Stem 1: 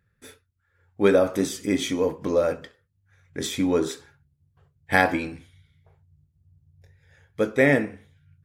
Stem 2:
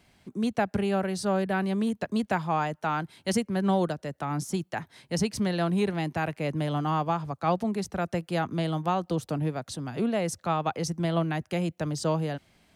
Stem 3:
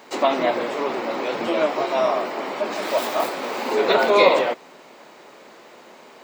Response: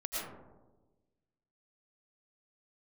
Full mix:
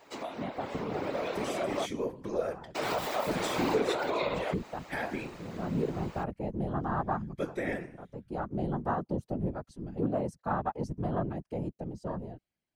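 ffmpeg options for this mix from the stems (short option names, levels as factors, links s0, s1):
-filter_complex "[0:a]alimiter=limit=0.211:level=0:latency=1:release=163,volume=0.282,asplit=2[s0][s1];[1:a]afwtdn=0.0316,bandreject=f=3600:w=12,volume=0.501[s2];[2:a]acompressor=threshold=0.0631:ratio=16,volume=0.531,asplit=3[s3][s4][s5];[s3]atrim=end=1.86,asetpts=PTS-STARTPTS,afade=t=out:st=1.856:d=0.004:c=hsin[s6];[s4]atrim=start=1.86:end=2.75,asetpts=PTS-STARTPTS,volume=0[s7];[s5]atrim=start=2.75,asetpts=PTS-STARTPTS,afade=t=in:d=0.004:c=hsin[s8];[s6][s7][s8]concat=n=3:v=0:a=1[s9];[s1]apad=whole_len=562473[s10];[s2][s10]sidechaincompress=threshold=0.00251:ratio=8:attack=9.9:release=474[s11];[s0][s11][s9]amix=inputs=3:normalize=0,afftfilt=real='hypot(re,im)*cos(2*PI*random(0))':imag='hypot(re,im)*sin(2*PI*random(1))':win_size=512:overlap=0.75,dynaudnorm=f=220:g=13:m=2.51"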